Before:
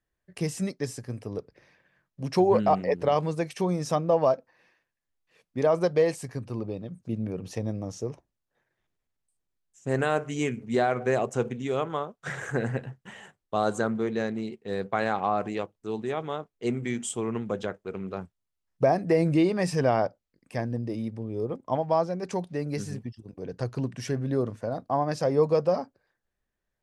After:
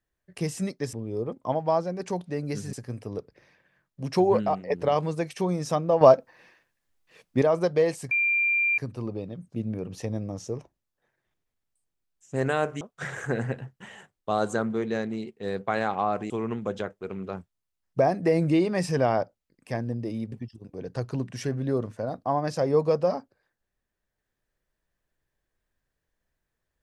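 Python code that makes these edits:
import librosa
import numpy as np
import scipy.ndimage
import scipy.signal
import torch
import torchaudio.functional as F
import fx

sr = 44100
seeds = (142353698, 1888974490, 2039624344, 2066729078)

y = fx.edit(x, sr, fx.fade_out_to(start_s=2.5, length_s=0.4, floor_db=-10.5),
    fx.clip_gain(start_s=4.21, length_s=1.41, db=8.0),
    fx.insert_tone(at_s=6.31, length_s=0.67, hz=2380.0, db=-20.5),
    fx.cut(start_s=10.34, length_s=1.72),
    fx.cut(start_s=15.55, length_s=1.59),
    fx.move(start_s=21.16, length_s=1.8, to_s=0.93), tone=tone)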